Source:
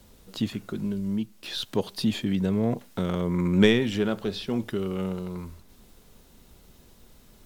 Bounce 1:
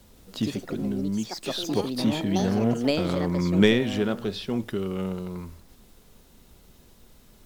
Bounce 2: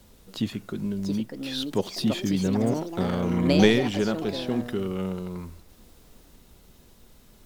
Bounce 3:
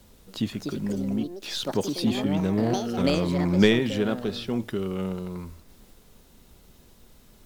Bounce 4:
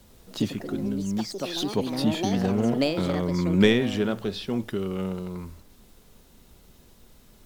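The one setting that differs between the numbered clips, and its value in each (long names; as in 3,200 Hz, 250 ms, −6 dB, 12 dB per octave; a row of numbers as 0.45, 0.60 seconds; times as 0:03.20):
delay with pitch and tempo change per echo, delay time: 161, 779, 350, 98 milliseconds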